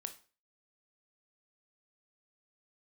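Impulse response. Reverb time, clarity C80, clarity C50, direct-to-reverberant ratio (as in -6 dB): 0.35 s, 18.5 dB, 13.5 dB, 7.5 dB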